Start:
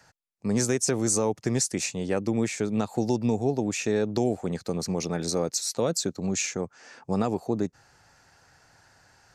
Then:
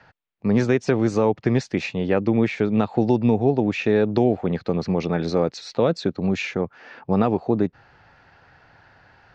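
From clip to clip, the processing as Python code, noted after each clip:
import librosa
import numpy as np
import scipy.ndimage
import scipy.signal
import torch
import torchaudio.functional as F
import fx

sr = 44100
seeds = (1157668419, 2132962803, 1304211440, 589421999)

y = scipy.signal.sosfilt(scipy.signal.butter(4, 3500.0, 'lowpass', fs=sr, output='sos'), x)
y = y * librosa.db_to_amplitude(6.5)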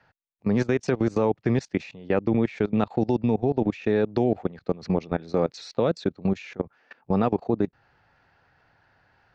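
y = fx.level_steps(x, sr, step_db=21)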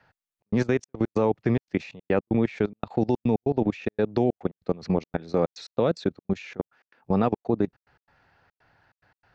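y = fx.step_gate(x, sr, bpm=143, pattern='xxxx.xxx.x.', floor_db=-60.0, edge_ms=4.5)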